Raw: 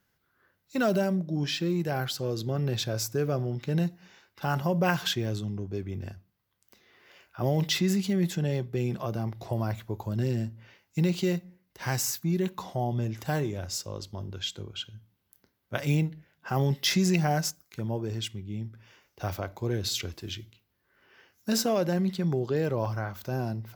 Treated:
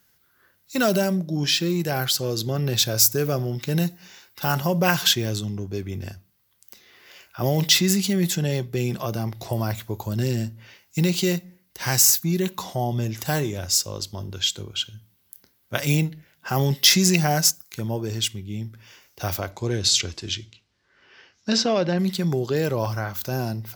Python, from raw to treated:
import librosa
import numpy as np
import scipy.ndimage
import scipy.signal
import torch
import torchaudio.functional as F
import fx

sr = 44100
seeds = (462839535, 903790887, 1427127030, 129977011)

y = fx.high_shelf(x, sr, hz=12000.0, db=8.5, at=(2.76, 4.52))
y = fx.lowpass(y, sr, hz=fx.line((19.5, 10000.0), (21.98, 4300.0)), slope=24, at=(19.5, 21.98), fade=0.02)
y = fx.high_shelf(y, sr, hz=3300.0, db=12.0)
y = y * librosa.db_to_amplitude(4.0)